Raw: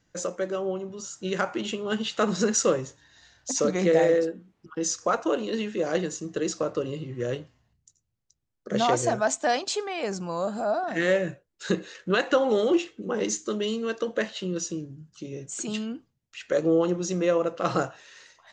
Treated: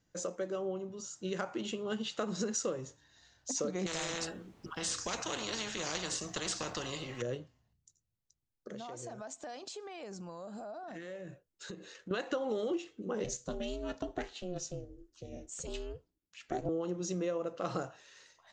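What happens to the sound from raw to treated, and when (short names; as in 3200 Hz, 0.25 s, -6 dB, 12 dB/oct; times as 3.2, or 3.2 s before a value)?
3.86–7.22 spectral compressor 4:1
8.7–12.11 compressor, threshold -35 dBFS
13.24–16.69 ring modulator 180 Hz
whole clip: bell 1900 Hz -3.5 dB 1.6 oct; compressor, threshold -25 dBFS; gain -6 dB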